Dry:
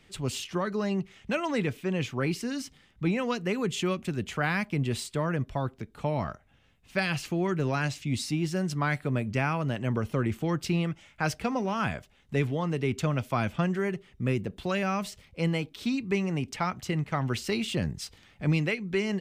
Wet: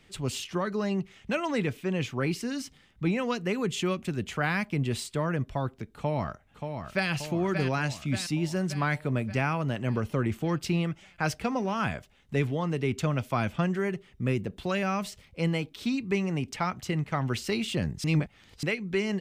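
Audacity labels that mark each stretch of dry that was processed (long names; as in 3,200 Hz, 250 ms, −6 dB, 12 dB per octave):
5.960000	7.100000	delay throw 580 ms, feedback 60%, level −6.5 dB
18.040000	18.630000	reverse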